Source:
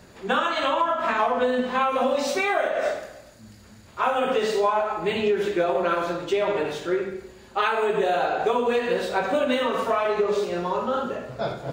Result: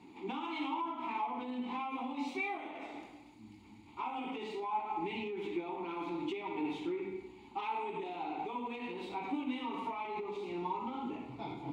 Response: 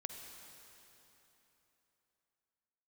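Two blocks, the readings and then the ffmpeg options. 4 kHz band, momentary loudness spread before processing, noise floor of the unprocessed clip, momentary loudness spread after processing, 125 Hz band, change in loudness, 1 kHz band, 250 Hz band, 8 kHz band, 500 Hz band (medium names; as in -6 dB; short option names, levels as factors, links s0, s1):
-16.0 dB, 6 LU, -49 dBFS, 8 LU, -13.5 dB, -15.0 dB, -13.0 dB, -8.5 dB, under -20 dB, -20.0 dB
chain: -filter_complex "[0:a]aexciter=amount=2:drive=3.1:freq=3000,asplit=2[s0][s1];[s1]alimiter=limit=0.112:level=0:latency=1,volume=1.19[s2];[s0][s2]amix=inputs=2:normalize=0,acompressor=threshold=0.112:ratio=6,asubboost=boost=3:cutoff=130,asoftclip=type=tanh:threshold=0.15,asplit=3[s3][s4][s5];[s3]bandpass=f=300:t=q:w=8,volume=1[s6];[s4]bandpass=f=870:t=q:w=8,volume=0.501[s7];[s5]bandpass=f=2240:t=q:w=8,volume=0.355[s8];[s6][s7][s8]amix=inputs=3:normalize=0,volume=1.12"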